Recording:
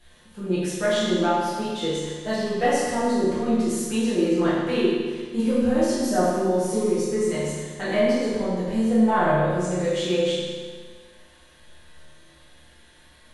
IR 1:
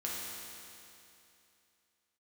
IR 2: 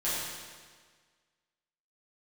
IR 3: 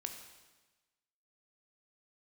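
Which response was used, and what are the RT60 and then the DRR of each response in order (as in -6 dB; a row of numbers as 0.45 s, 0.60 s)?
2; 2.8 s, 1.6 s, 1.2 s; -5.5 dB, -11.0 dB, 4.5 dB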